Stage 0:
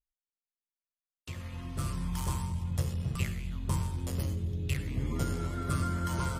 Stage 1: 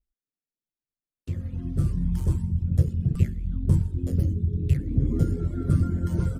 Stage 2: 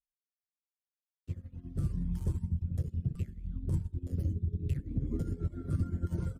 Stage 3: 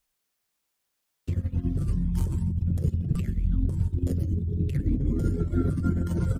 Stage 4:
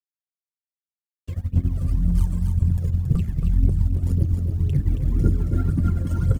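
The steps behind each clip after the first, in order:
tilt shelf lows +4.5 dB, about 920 Hz; reverb removal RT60 1.2 s; EQ curve 320 Hz 0 dB, 480 Hz -4 dB, 1000 Hz -19 dB, 1600 Hz -9 dB, 2400 Hz -13 dB, 8100 Hz -10 dB; gain +7.5 dB
limiter -18.5 dBFS, peak gain reduction 10.5 dB; upward expander 2.5:1, over -36 dBFS; gain -2.5 dB
in parallel at +1 dB: limiter -31 dBFS, peak gain reduction 9 dB; on the sum: negative-ratio compressor -32 dBFS, ratio -1; gain +7.5 dB
G.711 law mismatch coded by A; phaser 1.9 Hz, delay 2 ms, feedback 68%; on a send: echo 0.274 s -6 dB; on the sum: gain -2 dB

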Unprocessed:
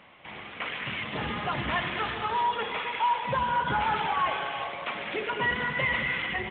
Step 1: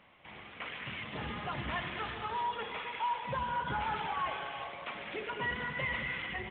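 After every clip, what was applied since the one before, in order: low shelf 86 Hz +7 dB; gain -8 dB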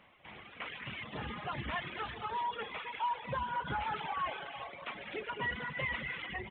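reverb removal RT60 0.85 s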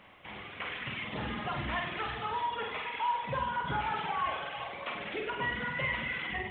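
in parallel at -2 dB: compressor, threshold -44 dBFS, peak gain reduction 12.5 dB; on the sum: flutter echo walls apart 8.3 m, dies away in 0.61 s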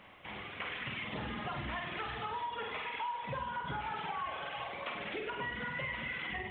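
compressor 4:1, threshold -36 dBFS, peak gain reduction 8.5 dB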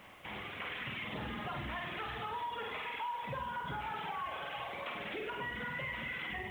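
in parallel at +3 dB: limiter -35 dBFS, peak gain reduction 8.5 dB; on the sum: requantised 10-bit, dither none; gain -6.5 dB

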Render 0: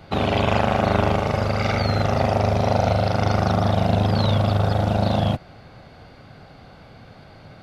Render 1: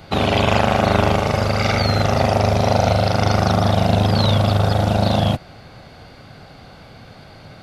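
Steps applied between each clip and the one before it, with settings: high shelf 3800 Hz +7.5 dB; gain +3 dB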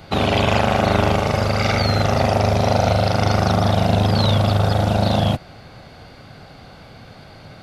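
soft clip -4 dBFS, distortion -24 dB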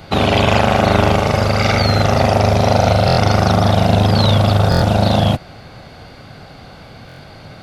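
stuck buffer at 3.06/4.7/7.07, samples 1024, times 4; gain +4 dB

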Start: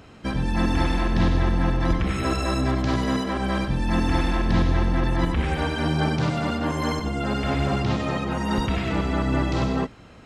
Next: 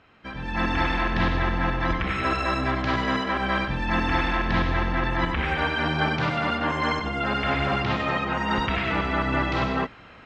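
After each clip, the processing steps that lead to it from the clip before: LPF 2200 Hz 12 dB/oct; tilt shelf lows -8.5 dB; AGC gain up to 11 dB; gain -7 dB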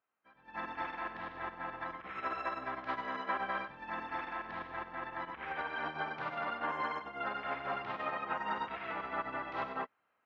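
limiter -17.5 dBFS, peak gain reduction 6.5 dB; band-pass 1000 Hz, Q 0.84; upward expander 2.5:1, over -43 dBFS; gain -3.5 dB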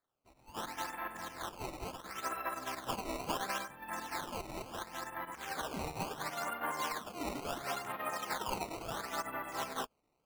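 decimation with a swept rate 15×, swing 160% 0.72 Hz; gain -1 dB

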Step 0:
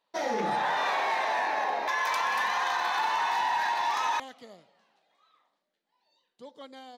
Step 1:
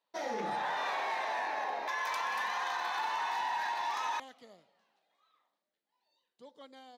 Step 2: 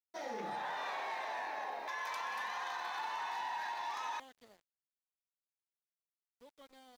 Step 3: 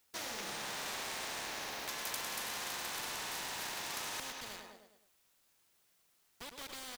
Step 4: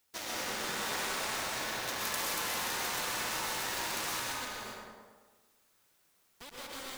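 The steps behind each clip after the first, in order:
low shelf 91 Hz -7.5 dB; gain -6.5 dB
added harmonics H 7 -42 dB, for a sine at -23.5 dBFS; sample gate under -56 dBFS; gain -5.5 dB
on a send: feedback echo 0.104 s, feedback 47%, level -11 dB; on the sum: spectral compressor 4:1; gain +7.5 dB
in parallel at -6 dB: bit-crush 6-bit; on the sum: plate-style reverb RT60 1.3 s, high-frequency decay 0.45×, pre-delay 0.11 s, DRR -4 dB; gain -1.5 dB

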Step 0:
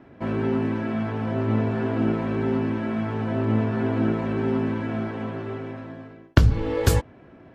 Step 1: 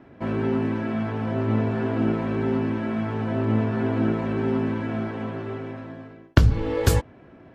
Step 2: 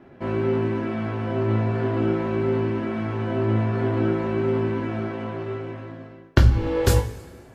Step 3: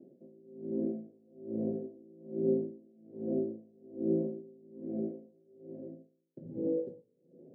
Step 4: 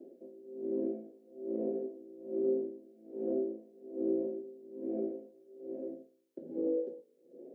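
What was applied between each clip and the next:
nothing audible
two-slope reverb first 0.25 s, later 1.6 s, from -18 dB, DRR 2 dB; gain -1 dB
elliptic band-pass 160–550 Hz, stop band 40 dB; dB-linear tremolo 1.2 Hz, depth 30 dB; gain -3.5 dB
HPF 290 Hz 24 dB/oct; compressor 2:1, threshold -40 dBFS, peak gain reduction 8 dB; gain +6.5 dB

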